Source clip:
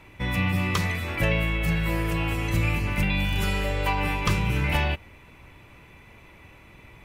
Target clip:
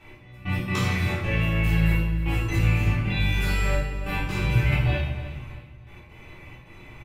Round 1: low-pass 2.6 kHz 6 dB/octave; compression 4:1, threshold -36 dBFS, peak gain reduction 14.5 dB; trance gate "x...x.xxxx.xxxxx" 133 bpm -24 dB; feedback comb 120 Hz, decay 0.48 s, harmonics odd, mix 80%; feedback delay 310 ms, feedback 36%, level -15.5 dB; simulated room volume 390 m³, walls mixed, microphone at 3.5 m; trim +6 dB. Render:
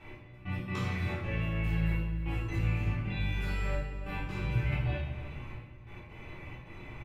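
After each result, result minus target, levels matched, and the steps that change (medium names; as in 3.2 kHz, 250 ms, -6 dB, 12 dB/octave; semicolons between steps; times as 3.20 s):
compression: peak gain reduction +9 dB; 8 kHz band -6.5 dB
change: compression 4:1, threshold -24 dBFS, peak gain reduction 5.5 dB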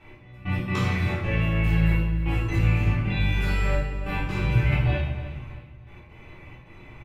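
8 kHz band -7.0 dB
change: low-pass 10 kHz 6 dB/octave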